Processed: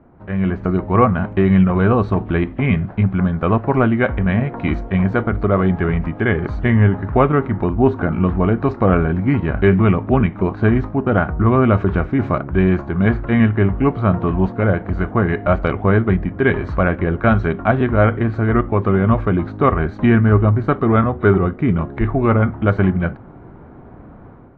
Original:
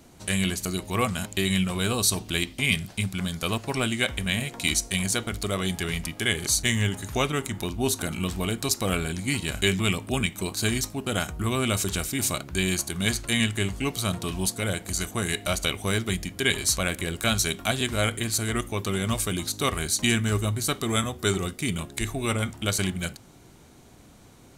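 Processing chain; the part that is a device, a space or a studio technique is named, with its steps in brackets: action camera in a waterproof case (LPF 1500 Hz 24 dB/oct; AGC gain up to 9.5 dB; gain +3.5 dB; AAC 64 kbps 24000 Hz)

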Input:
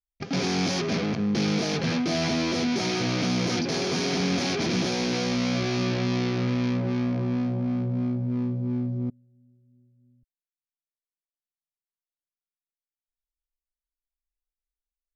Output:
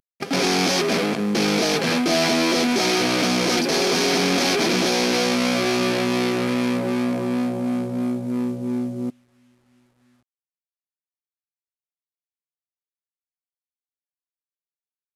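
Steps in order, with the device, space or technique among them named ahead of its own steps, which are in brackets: early wireless headset (HPF 280 Hz 12 dB/oct; CVSD 64 kbps); gain +8.5 dB

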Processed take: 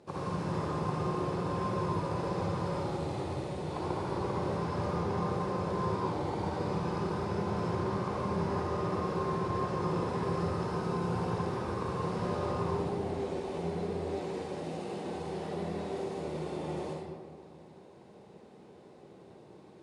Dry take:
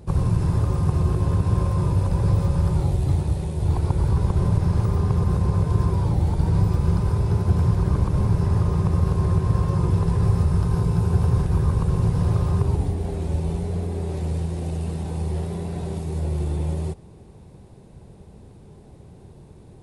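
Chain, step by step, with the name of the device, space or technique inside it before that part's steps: supermarket ceiling speaker (BPF 320–6000 Hz; reverb RT60 1.6 s, pre-delay 47 ms, DRR -3.5 dB); gain -5.5 dB

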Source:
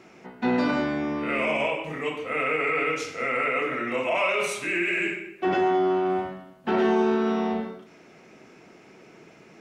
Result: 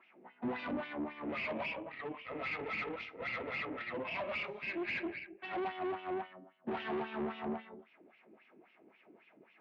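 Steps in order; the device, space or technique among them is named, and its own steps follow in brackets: wah-wah guitar rig (wah 3.7 Hz 320–3000 Hz, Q 2.6; tube stage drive 33 dB, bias 0.65; speaker cabinet 88–3600 Hz, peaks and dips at 220 Hz +6 dB, 450 Hz -5 dB, 1400 Hz -4 dB)

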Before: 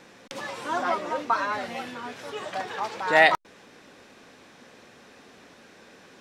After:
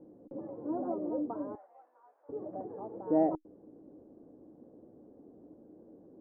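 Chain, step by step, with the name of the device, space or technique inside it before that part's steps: 1.55–2.29 HPF 930 Hz 24 dB/oct; under water (LPF 590 Hz 24 dB/oct; bell 310 Hz +12 dB 0.25 oct); gain -3.5 dB

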